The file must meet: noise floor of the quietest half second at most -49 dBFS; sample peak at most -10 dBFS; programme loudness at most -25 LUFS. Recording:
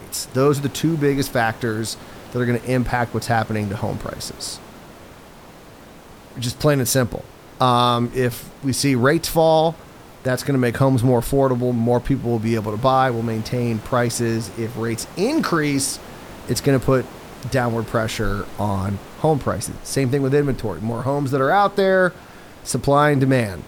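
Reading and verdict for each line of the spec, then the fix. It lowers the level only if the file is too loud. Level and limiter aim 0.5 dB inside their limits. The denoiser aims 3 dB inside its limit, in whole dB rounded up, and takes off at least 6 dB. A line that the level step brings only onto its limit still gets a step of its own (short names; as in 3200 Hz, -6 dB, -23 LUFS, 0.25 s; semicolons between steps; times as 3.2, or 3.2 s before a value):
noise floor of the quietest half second -42 dBFS: fail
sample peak -3.5 dBFS: fail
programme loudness -20.0 LUFS: fail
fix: denoiser 6 dB, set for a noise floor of -42 dBFS; gain -5.5 dB; limiter -10.5 dBFS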